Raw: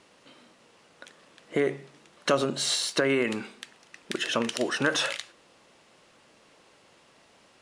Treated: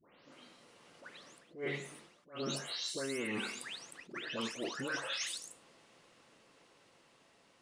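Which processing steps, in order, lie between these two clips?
spectral delay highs late, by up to 0.325 s; Doppler pass-by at 2.9, 7 m/s, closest 9.1 m; reverse; compressor 16:1, threshold -39 dBFS, peak gain reduction 19.5 dB; reverse; attack slew limiter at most 190 dB/s; gain +4 dB

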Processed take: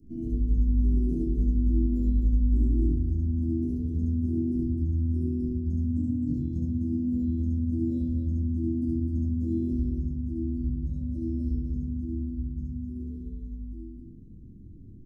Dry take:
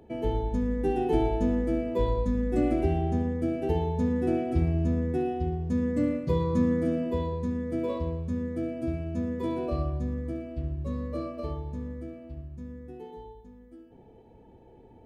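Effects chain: Chebyshev band-stop 250–5600 Hz, order 3; high shelf 2200 Hz -11 dB; compressor, threshold -35 dBFS, peak gain reduction 13.5 dB; loudspeakers at several distances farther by 24 m 0 dB, 88 m -3 dB; shoebox room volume 490 m³, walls furnished, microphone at 2.9 m

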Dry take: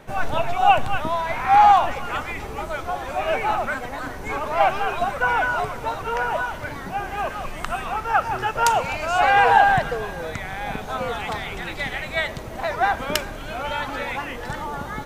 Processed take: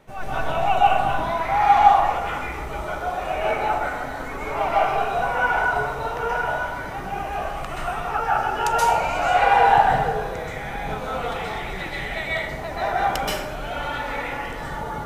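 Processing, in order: notch 1600 Hz, Q 16; plate-style reverb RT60 1.1 s, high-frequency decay 0.5×, pre-delay 0.115 s, DRR -7 dB; gain -8 dB

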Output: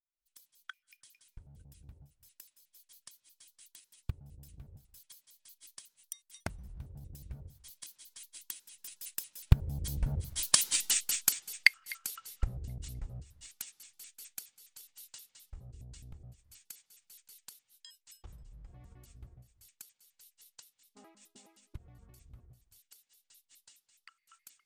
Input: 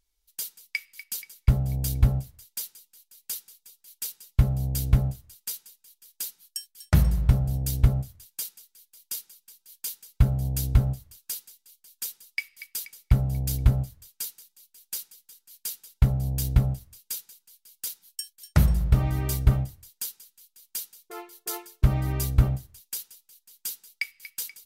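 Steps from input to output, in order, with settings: trilling pitch shifter -8 st, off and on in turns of 98 ms; recorder AGC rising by 75 dB/s; Doppler pass-by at 10.78, 23 m/s, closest 3.9 m; gain -1 dB

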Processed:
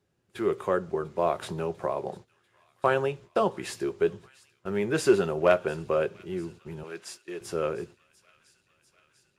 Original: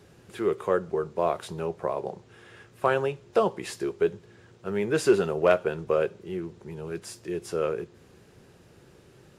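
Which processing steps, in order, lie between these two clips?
6.83–7.41 weighting filter A; gate -44 dBFS, range -20 dB; notch 460 Hz, Q 13; thin delay 0.695 s, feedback 71%, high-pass 2300 Hz, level -19.5 dB; 1.41–1.87 three-band squash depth 40%

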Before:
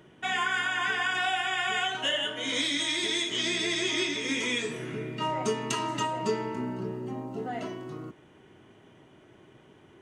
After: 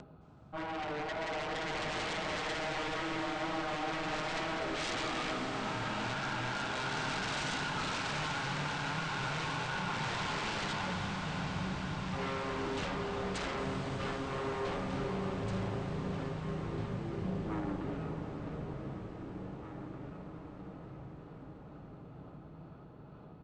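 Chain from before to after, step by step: HPF 160 Hz 6 dB/oct; bell 930 Hz +7.5 dB 2.3 oct; upward compressor, threshold -41 dBFS; rotary speaker horn 0.85 Hz, later 5 Hz, at 5.72; wavefolder -28.5 dBFS; tube stage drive 34 dB, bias 0.75; echo 0.909 s -10.5 dB; on a send at -2 dB: reverb RT60 5.8 s, pre-delay 88 ms; on the sum: speed mistake 78 rpm record played at 33 rpm

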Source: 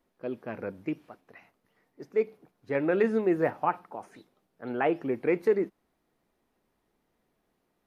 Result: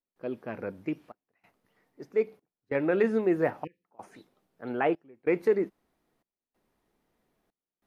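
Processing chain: step gate ".xxxxxx." 94 bpm -24 dB; spectral delete 3.64–3.85, 530–1700 Hz

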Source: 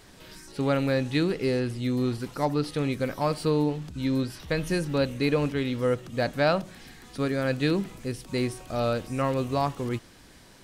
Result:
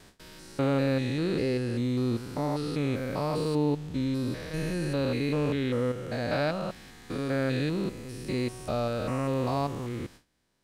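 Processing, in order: stepped spectrum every 0.2 s; gate with hold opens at -42 dBFS

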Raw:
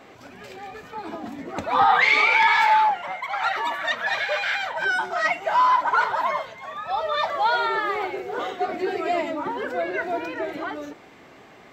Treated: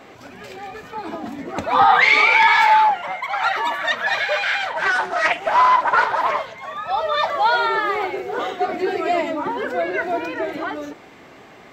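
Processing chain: 4.4–6.59 Doppler distortion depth 0.25 ms; gain +4 dB

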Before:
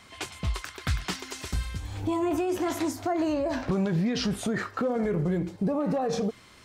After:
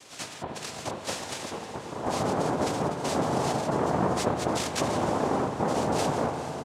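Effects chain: harmoniser -7 st -5 dB, +4 st -3 dB; high shelf 5000 Hz +2.5 dB; spectral gate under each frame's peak -15 dB strong; limiter -20 dBFS, peak gain reduction 6.5 dB; noise vocoder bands 2; diffused feedback echo 0.468 s, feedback 56%, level -12.5 dB; spring tank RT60 3.4 s, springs 37/59 ms, chirp 45 ms, DRR 6 dB; ending taper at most 130 dB/s

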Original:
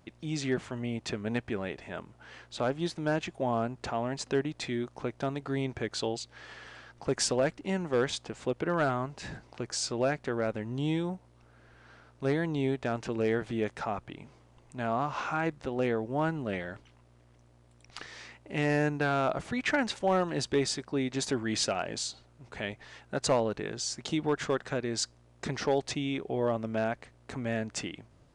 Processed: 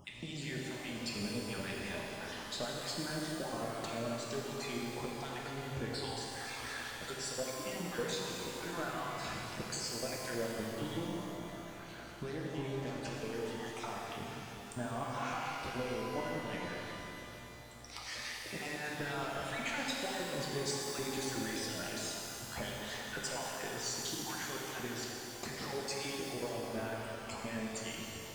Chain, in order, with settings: random spectral dropouts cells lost 38%; high shelf 4100 Hz +9 dB; compressor 4:1, threshold -44 dBFS, peak gain reduction 19 dB; harmonic tremolo 5 Hz, crossover 1600 Hz; soft clip -37 dBFS, distortion -18 dB; flange 0.2 Hz, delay 7.2 ms, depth 6.5 ms, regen -62%; shimmer reverb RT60 3.2 s, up +12 st, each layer -8 dB, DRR -3 dB; gain +10.5 dB

